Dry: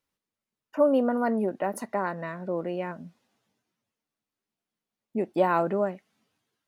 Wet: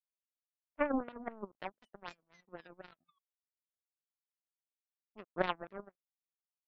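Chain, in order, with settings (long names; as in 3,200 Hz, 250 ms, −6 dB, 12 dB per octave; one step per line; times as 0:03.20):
sound drawn into the spectrogram fall, 0:01.65–0:03.19, 1,100–3,500 Hz −36 dBFS
auto-filter low-pass sine 3.9 Hz 250–2,500 Hz
power curve on the samples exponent 3
level −4 dB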